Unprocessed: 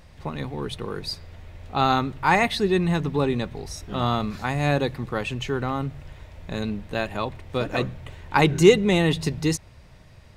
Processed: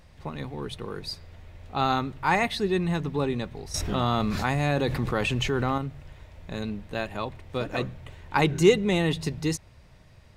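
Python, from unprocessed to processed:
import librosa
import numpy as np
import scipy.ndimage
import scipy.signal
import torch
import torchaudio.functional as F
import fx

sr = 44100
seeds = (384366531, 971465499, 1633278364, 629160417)

y = fx.env_flatten(x, sr, amount_pct=70, at=(3.74, 5.78))
y = y * librosa.db_to_amplitude(-4.0)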